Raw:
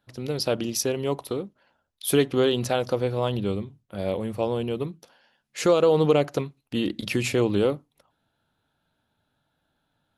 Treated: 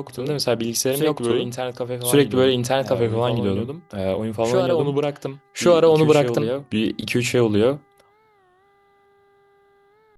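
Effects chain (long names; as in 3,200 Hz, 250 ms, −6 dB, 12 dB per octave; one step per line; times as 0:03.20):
hum with harmonics 400 Hz, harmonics 5, −62 dBFS −6 dB per octave
on a send: backwards echo 1,121 ms −6.5 dB
on the sum: wow of a warped record 33 1/3 rpm, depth 160 cents
level +4.5 dB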